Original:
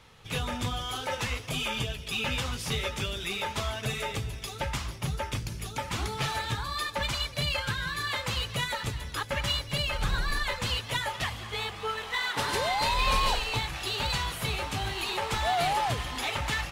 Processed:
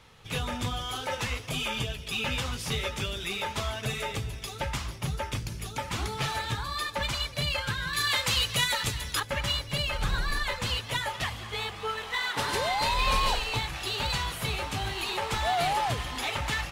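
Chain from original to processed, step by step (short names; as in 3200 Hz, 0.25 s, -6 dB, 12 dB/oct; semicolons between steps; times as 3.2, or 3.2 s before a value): 7.93–9.2 high shelf 2100 Hz +9.5 dB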